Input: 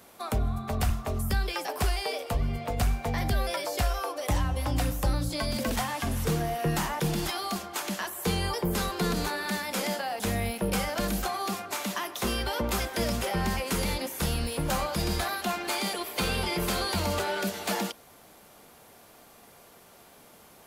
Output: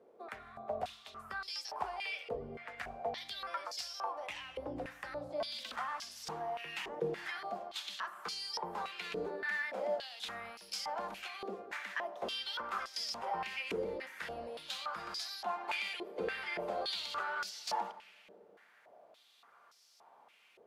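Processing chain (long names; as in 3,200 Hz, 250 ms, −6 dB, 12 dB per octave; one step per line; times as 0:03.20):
on a send at −14 dB: convolution reverb RT60 2.7 s, pre-delay 4 ms
on the sum: band-pass on a step sequencer 3.5 Hz 450–5,100 Hz
level +1.5 dB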